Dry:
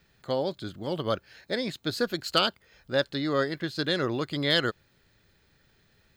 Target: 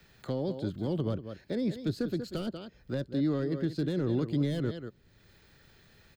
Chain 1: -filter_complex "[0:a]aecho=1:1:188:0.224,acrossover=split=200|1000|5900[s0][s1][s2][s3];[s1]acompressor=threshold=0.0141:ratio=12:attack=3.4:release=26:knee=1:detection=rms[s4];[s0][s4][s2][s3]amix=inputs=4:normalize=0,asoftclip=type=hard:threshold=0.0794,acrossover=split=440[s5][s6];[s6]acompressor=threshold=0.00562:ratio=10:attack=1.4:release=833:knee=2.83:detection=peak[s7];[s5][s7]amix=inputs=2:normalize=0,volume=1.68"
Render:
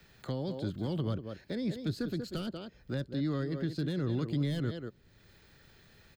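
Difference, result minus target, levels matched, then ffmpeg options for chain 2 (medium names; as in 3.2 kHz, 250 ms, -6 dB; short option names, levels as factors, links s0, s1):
compression: peak gain reduction +7 dB
-filter_complex "[0:a]aecho=1:1:188:0.224,acrossover=split=200|1000|5900[s0][s1][s2][s3];[s1]acompressor=threshold=0.0335:ratio=12:attack=3.4:release=26:knee=1:detection=rms[s4];[s0][s4][s2][s3]amix=inputs=4:normalize=0,asoftclip=type=hard:threshold=0.0794,acrossover=split=440[s5][s6];[s6]acompressor=threshold=0.00562:ratio=10:attack=1.4:release=833:knee=2.83:detection=peak[s7];[s5][s7]amix=inputs=2:normalize=0,volume=1.68"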